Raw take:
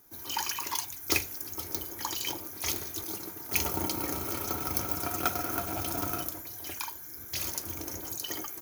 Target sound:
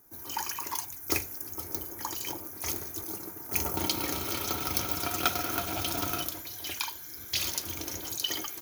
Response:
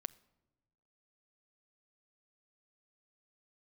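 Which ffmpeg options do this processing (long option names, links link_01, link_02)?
-af "asetnsamples=nb_out_samples=441:pad=0,asendcmd='3.77 equalizer g 10',equalizer=frequency=3500:width_type=o:width=1.2:gain=-7.5"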